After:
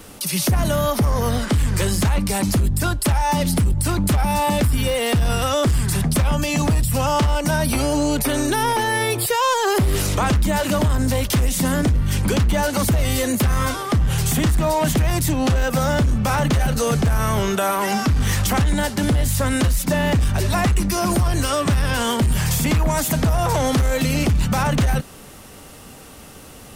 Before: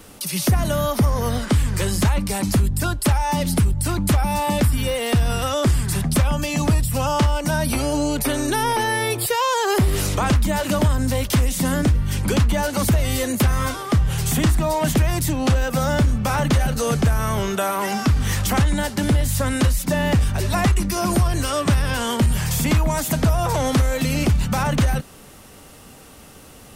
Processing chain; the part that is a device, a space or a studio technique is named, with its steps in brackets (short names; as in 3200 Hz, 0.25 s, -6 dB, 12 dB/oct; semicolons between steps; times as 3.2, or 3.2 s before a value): limiter into clipper (limiter -14 dBFS, peak gain reduction 4 dB; hard clip -16.5 dBFS, distortion -22 dB); gain +3 dB